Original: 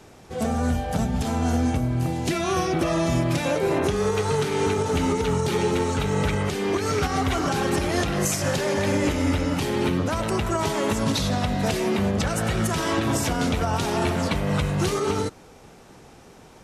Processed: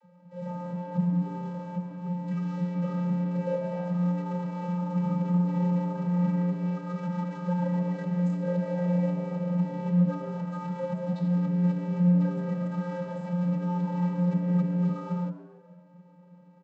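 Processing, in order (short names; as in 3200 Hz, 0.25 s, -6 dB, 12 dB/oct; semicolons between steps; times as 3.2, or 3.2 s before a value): median filter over 15 samples; vocoder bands 32, square 177 Hz; frequency-shifting echo 0.139 s, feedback 49%, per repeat +110 Hz, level -19 dB; gain -2.5 dB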